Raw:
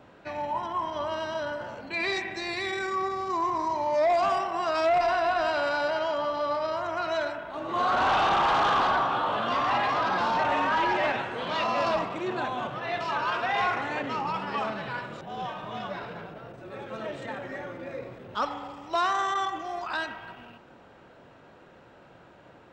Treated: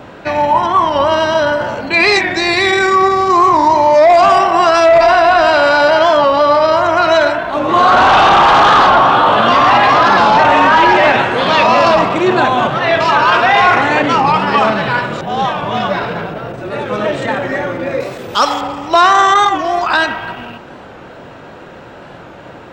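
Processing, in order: 18–18.61 tone controls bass -6 dB, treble +14 dB; maximiser +20 dB; record warp 45 rpm, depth 100 cents; gain -1 dB

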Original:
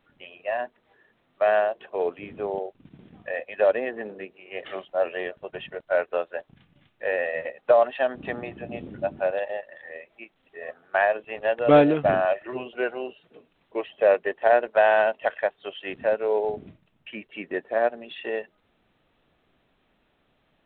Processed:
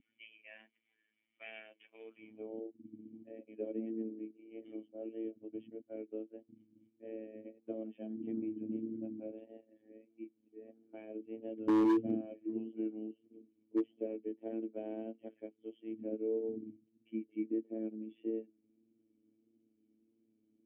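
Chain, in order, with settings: dynamic EQ 870 Hz, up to -4 dB, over -32 dBFS, Q 1.1; band-pass sweep 1900 Hz -> 330 Hz, 1.99–2.72; robotiser 110 Hz; vibrato 1.6 Hz 31 cents; vocal tract filter i; hard clip -37 dBFS, distortion -11 dB; gain +12 dB

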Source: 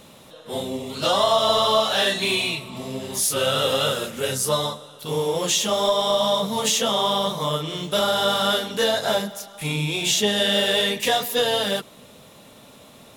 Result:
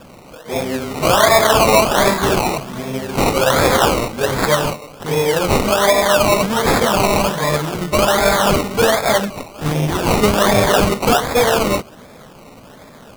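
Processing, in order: 3.58–4.12 tilt +2.5 dB/oct; decimation with a swept rate 21×, swing 60% 1.3 Hz; gain +7 dB

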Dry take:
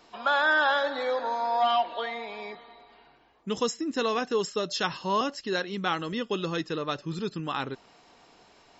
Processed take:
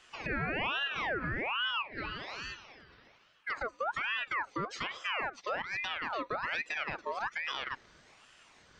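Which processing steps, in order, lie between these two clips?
treble ducked by the level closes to 850 Hz, closed at -23.5 dBFS; 1.71–2.28 low shelf 400 Hz -12 dB; limiter -24 dBFS, peak gain reduction 8.5 dB; ring modulator with a swept carrier 1500 Hz, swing 50%, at 1.2 Hz

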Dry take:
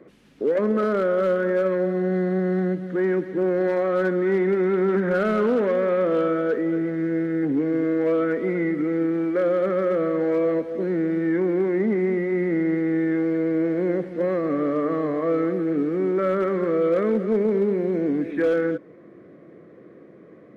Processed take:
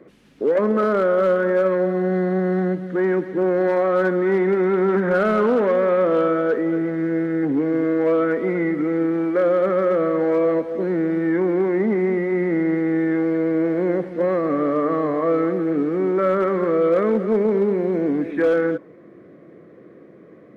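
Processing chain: dynamic EQ 920 Hz, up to +6 dB, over -40 dBFS, Q 1.3; gain +1.5 dB

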